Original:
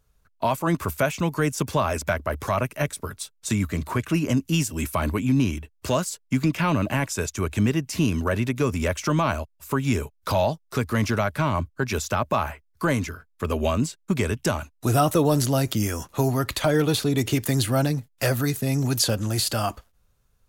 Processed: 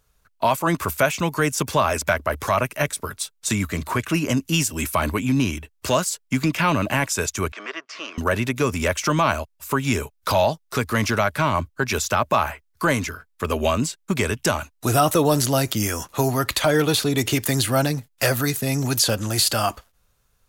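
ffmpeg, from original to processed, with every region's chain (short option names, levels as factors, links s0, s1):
-filter_complex "[0:a]asettb=1/sr,asplit=3[s0][s1][s2];[s0]atrim=end=7.524[s3];[s1]atrim=start=7.52:end=8.18,asetpts=PTS-STARTPTS,afade=t=in:d=0.004:c=qsin,afade=t=out:st=0.656:d=0.004:c=qsin,aeval=exprs='if(lt(val(0),0),0.447*val(0),val(0))':c=same,highpass=f=460:w=0.5412,highpass=f=460:w=1.3066,equalizer=f=510:t=q:w=4:g=-7,equalizer=f=810:t=q:w=4:g=-9,equalizer=f=1200:t=q:w=4:g=7,equalizer=f=2700:t=q:w=4:g=-4,equalizer=f=3900:t=q:w=4:g=-8,lowpass=f=4600:w=0.5412,lowpass=f=4600:w=1.3066[s4];[s2]atrim=start=8.176[s5];[s3][s4]acrossfade=d=0.004:c1=hsin:c2=qsin[s6];[s6][s5]acrossfade=d=0.004:c1=qsin:c2=hsin,lowshelf=f=480:g=-7,alimiter=level_in=3.98:limit=0.891:release=50:level=0:latency=1,volume=0.501"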